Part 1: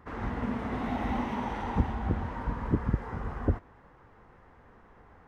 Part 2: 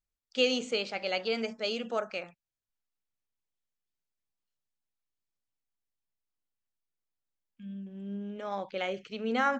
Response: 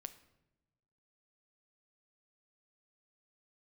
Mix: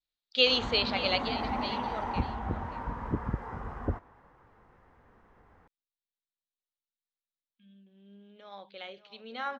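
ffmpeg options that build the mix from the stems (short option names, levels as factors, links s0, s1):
-filter_complex "[0:a]adelay=400,volume=0.562[s0];[1:a]lowpass=f=3900:t=q:w=5,lowshelf=f=180:g=-8.5,volume=0.794,afade=t=out:st=1.1:d=0.25:silence=0.281838,asplit=2[s1][s2];[s2]volume=0.188,aecho=0:1:582:1[s3];[s0][s1][s3]amix=inputs=3:normalize=0,adynamicequalizer=threshold=0.00398:dfrequency=930:dqfactor=0.87:tfrequency=930:tqfactor=0.87:attack=5:release=100:ratio=0.375:range=3.5:mode=boostabove:tftype=bell"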